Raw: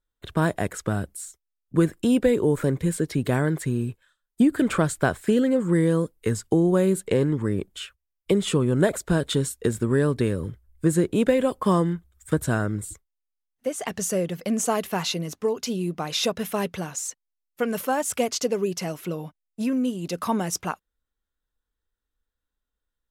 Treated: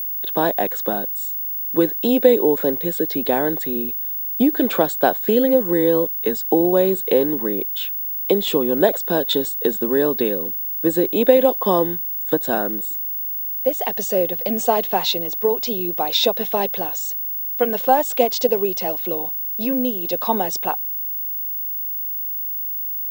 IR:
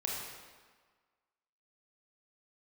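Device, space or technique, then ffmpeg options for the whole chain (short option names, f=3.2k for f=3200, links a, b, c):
old television with a line whistle: -af "highpass=f=230:w=0.5412,highpass=f=230:w=1.3066,equalizer=f=510:t=q:w=4:g=5,equalizer=f=780:t=q:w=4:g=9,equalizer=f=1.3k:t=q:w=4:g=-7,equalizer=f=2.1k:t=q:w=4:g=-3,equalizer=f=3.7k:t=q:w=4:g=7,equalizer=f=6.5k:t=q:w=4:g=-5,lowpass=f=7.4k:w=0.5412,lowpass=f=7.4k:w=1.3066,aeval=exprs='val(0)+0.0501*sin(2*PI*15625*n/s)':c=same,volume=3dB"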